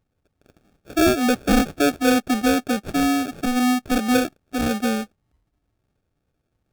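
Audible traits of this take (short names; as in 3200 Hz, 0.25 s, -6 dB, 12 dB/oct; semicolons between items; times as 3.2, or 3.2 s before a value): aliases and images of a low sample rate 1000 Hz, jitter 0%; AAC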